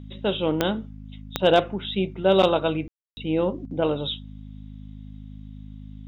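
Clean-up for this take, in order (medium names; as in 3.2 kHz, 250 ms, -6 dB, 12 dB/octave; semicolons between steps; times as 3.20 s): clip repair -7.5 dBFS; de-click; de-hum 51.9 Hz, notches 5; room tone fill 2.88–3.17 s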